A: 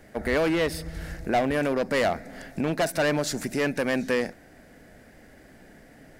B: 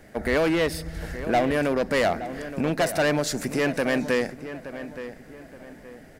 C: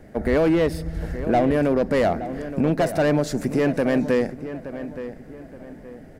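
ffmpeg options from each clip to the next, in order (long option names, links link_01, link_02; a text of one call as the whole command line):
ffmpeg -i in.wav -filter_complex "[0:a]asplit=2[link_01][link_02];[link_02]adelay=872,lowpass=frequency=2500:poles=1,volume=-12dB,asplit=2[link_03][link_04];[link_04]adelay=872,lowpass=frequency=2500:poles=1,volume=0.37,asplit=2[link_05][link_06];[link_06]adelay=872,lowpass=frequency=2500:poles=1,volume=0.37,asplit=2[link_07][link_08];[link_08]adelay=872,lowpass=frequency=2500:poles=1,volume=0.37[link_09];[link_01][link_03][link_05][link_07][link_09]amix=inputs=5:normalize=0,volume=1.5dB" out.wav
ffmpeg -i in.wav -af "tiltshelf=frequency=970:gain=6" out.wav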